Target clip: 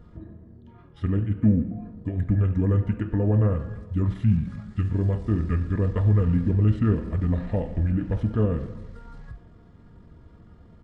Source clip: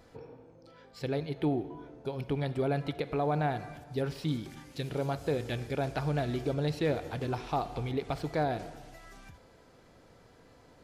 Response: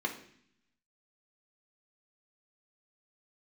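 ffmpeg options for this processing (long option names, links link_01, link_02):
-filter_complex "[0:a]bass=frequency=250:gain=10,treble=frequency=4000:gain=-7,asplit=2[link_01][link_02];[1:a]atrim=start_sample=2205,lowshelf=frequency=190:gain=-5[link_03];[link_02][link_03]afir=irnorm=-1:irlink=0,volume=-8dB[link_04];[link_01][link_04]amix=inputs=2:normalize=0,asetrate=31183,aresample=44100,atempo=1.41421,volume=2dB"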